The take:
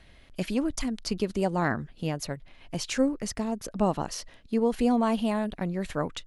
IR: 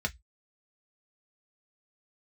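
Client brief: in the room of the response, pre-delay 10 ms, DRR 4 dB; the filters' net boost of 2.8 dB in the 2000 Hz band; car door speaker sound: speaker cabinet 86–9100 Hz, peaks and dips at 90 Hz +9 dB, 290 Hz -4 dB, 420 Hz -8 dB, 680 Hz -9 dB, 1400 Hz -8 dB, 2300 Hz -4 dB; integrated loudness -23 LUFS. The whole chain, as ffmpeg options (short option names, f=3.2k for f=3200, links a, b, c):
-filter_complex "[0:a]equalizer=f=2k:t=o:g=8,asplit=2[a][b];[1:a]atrim=start_sample=2205,adelay=10[c];[b][c]afir=irnorm=-1:irlink=0,volume=-9.5dB[d];[a][d]amix=inputs=2:normalize=0,highpass=86,equalizer=f=90:t=q:w=4:g=9,equalizer=f=290:t=q:w=4:g=-4,equalizer=f=420:t=q:w=4:g=-8,equalizer=f=680:t=q:w=4:g=-9,equalizer=f=1.4k:t=q:w=4:g=-8,equalizer=f=2.3k:t=q:w=4:g=-4,lowpass=f=9.1k:w=0.5412,lowpass=f=9.1k:w=1.3066,volume=5.5dB"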